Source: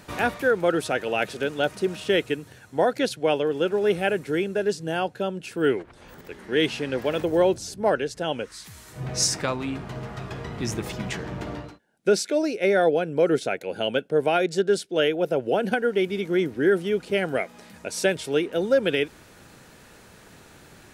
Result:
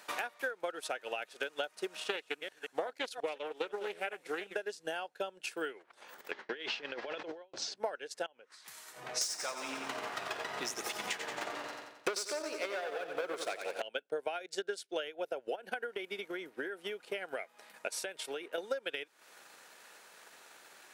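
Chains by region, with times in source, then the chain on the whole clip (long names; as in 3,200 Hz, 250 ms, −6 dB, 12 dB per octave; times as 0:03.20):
0:01.95–0:04.56: delay that plays each chunk backwards 179 ms, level −12 dB + high-pass filter 55 Hz + highs frequency-modulated by the lows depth 0.18 ms
0:06.31–0:07.76: low-pass filter 5,100 Hz 24 dB per octave + compressor whose output falls as the input rises −30 dBFS + noise gate with hold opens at −25 dBFS, closes at −27 dBFS
0:08.26–0:08.68: downward compressor 8 to 1, threshold −40 dBFS + low-pass filter 2,000 Hz 6 dB per octave
0:09.21–0:13.82: leveller curve on the samples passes 3 + repeating echo 89 ms, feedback 59%, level −6.5 dB
0:15.55–0:18.58: parametric band 6,000 Hz −4.5 dB 1.3 octaves + downward compressor 10 to 1, threshold −23 dBFS
whole clip: high-pass filter 660 Hz 12 dB per octave; downward compressor 6 to 1, threshold −33 dBFS; transient designer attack +6 dB, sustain −8 dB; level −4 dB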